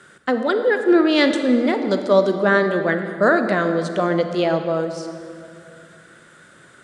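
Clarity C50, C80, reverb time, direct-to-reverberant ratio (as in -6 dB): 7.5 dB, 8.5 dB, 2.5 s, 7.0 dB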